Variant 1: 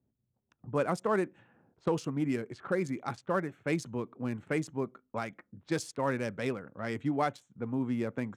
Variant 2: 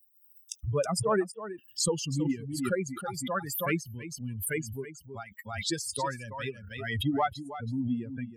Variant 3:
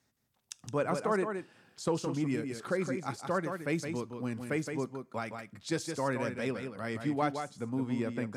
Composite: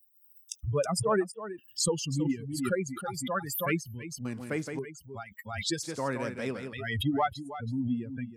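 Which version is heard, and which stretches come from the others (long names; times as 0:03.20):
2
0:04.25–0:04.79: punch in from 3
0:05.83–0:06.73: punch in from 3
not used: 1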